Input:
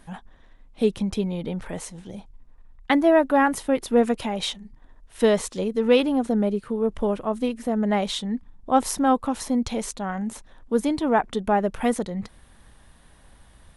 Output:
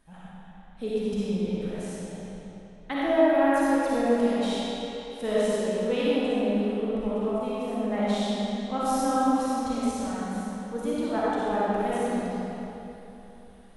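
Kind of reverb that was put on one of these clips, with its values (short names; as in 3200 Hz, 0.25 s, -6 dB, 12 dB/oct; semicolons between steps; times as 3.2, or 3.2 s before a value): digital reverb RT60 3.3 s, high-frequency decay 0.8×, pre-delay 15 ms, DRR -9 dB; gain -13 dB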